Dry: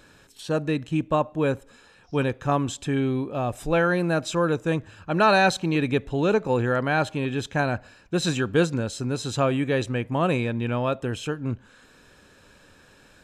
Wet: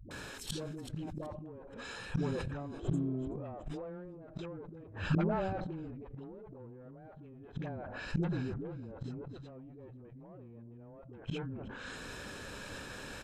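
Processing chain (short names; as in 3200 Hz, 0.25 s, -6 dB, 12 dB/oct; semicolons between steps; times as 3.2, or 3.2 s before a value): tube stage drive 23 dB, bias 0.5; treble ducked by the level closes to 710 Hz, closed at -25 dBFS; spectral repair 2.75–3.06, 320–6400 Hz both; compressor 20:1, threshold -31 dBFS, peak gain reduction 8 dB; dispersion highs, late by 0.11 s, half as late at 300 Hz; flipped gate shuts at -31 dBFS, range -27 dB; de-hum 167.3 Hz, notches 2; on a send: frequency-shifting echo 0.377 s, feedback 34%, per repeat -50 Hz, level -24 dB; on the sum: sustainer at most 22 dB/s; gain +10.5 dB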